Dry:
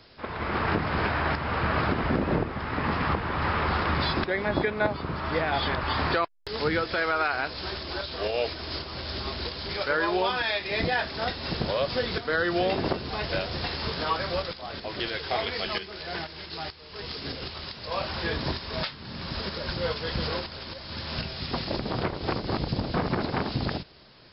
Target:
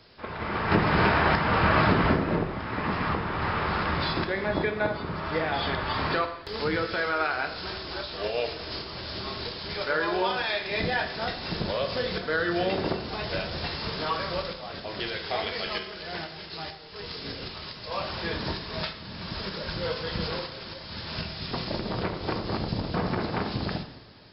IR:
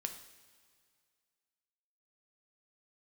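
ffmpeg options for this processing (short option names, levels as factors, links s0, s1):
-filter_complex "[0:a]asplit=3[s0][s1][s2];[s0]afade=t=out:st=0.7:d=0.02[s3];[s1]acontrast=53,afade=t=in:st=0.7:d=0.02,afade=t=out:st=2.12:d=0.02[s4];[s2]afade=t=in:st=2.12:d=0.02[s5];[s3][s4][s5]amix=inputs=3:normalize=0[s6];[1:a]atrim=start_sample=2205[s7];[s6][s7]afir=irnorm=-1:irlink=0"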